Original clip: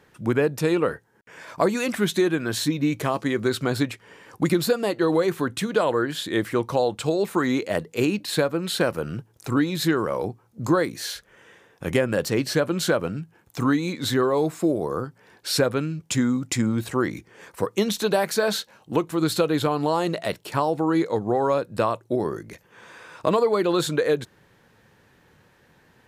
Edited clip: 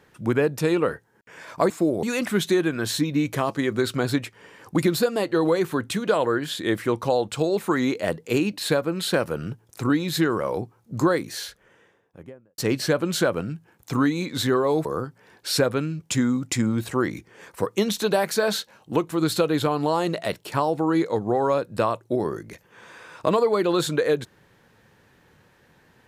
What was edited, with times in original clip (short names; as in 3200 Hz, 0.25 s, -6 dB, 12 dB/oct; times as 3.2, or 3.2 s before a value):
10.87–12.25 studio fade out
14.52–14.85 move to 1.7